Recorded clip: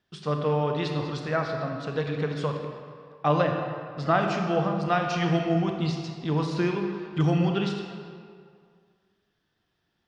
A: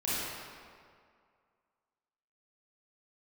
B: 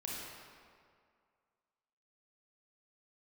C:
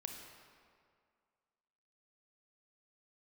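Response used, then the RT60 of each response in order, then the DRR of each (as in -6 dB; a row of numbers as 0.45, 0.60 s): C; 2.1, 2.1, 2.1 s; -10.0, -4.5, 2.5 dB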